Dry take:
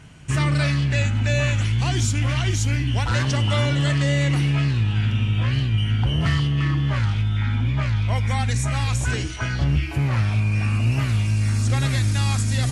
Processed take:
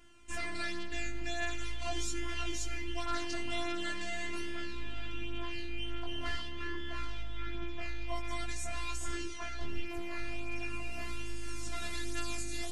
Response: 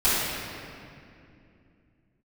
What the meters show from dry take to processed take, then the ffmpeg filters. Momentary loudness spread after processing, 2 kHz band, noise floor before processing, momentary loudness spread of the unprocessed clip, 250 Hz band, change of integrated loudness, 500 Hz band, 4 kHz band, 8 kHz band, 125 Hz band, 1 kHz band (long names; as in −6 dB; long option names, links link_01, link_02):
5 LU, −11.5 dB, −25 dBFS, 2 LU, −16.0 dB, −18.0 dB, −11.5 dB, −12.0 dB, −11.5 dB, −30.0 dB, −11.5 dB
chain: -filter_complex "[0:a]asplit=2[link_01][link_02];[1:a]atrim=start_sample=2205,adelay=22[link_03];[link_02][link_03]afir=irnorm=-1:irlink=0,volume=-32dB[link_04];[link_01][link_04]amix=inputs=2:normalize=0,afftfilt=real='hypot(re,im)*cos(PI*b)':imag='0':win_size=512:overlap=0.75,flanger=delay=18:depth=2.8:speed=0.44,volume=-5dB"